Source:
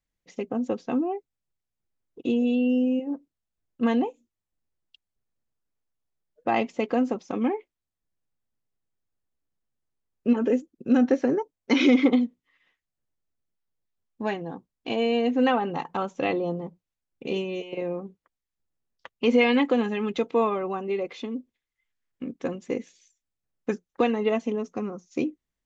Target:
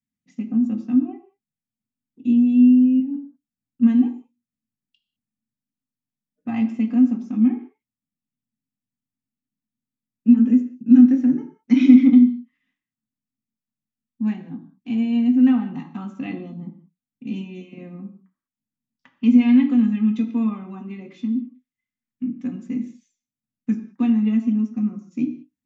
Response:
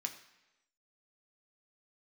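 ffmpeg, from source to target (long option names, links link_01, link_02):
-filter_complex "[0:a]lowshelf=frequency=340:width_type=q:width=3:gain=11.5[link_01];[1:a]atrim=start_sample=2205,afade=type=out:start_time=0.26:duration=0.01,atrim=end_sample=11907[link_02];[link_01][link_02]afir=irnorm=-1:irlink=0,volume=-7.5dB"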